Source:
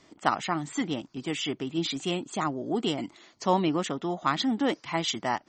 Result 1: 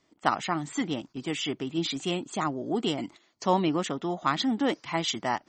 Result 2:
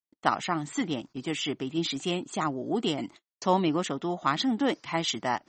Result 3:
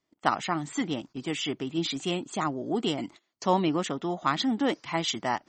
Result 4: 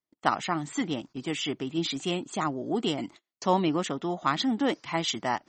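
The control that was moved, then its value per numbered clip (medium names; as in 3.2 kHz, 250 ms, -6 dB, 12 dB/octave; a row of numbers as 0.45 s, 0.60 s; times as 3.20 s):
gate, range: -11 dB, -51 dB, -23 dB, -37 dB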